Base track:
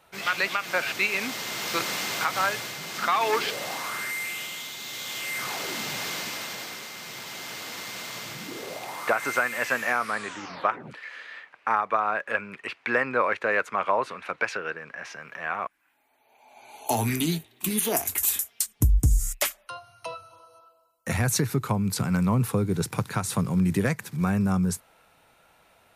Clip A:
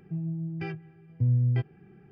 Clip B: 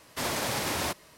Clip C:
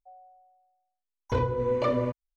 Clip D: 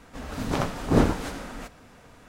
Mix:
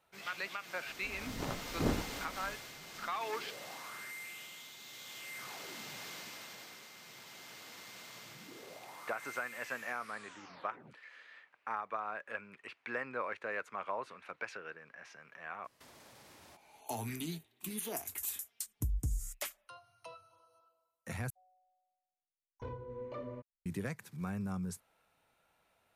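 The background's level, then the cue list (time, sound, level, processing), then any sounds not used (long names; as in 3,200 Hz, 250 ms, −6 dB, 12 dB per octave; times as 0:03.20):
base track −14.5 dB
0:00.89: mix in D −13 dB
0:15.64: mix in B −16 dB + downward compressor 12 to 1, threshold −38 dBFS
0:21.30: overwrite with C −17.5 dB + high-shelf EQ 3,600 Hz −9 dB
not used: A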